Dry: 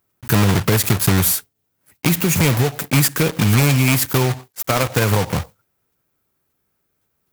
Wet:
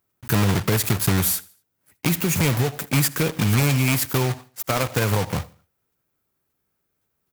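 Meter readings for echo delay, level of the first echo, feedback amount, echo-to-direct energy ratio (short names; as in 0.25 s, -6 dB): 79 ms, -22.5 dB, 38%, -22.0 dB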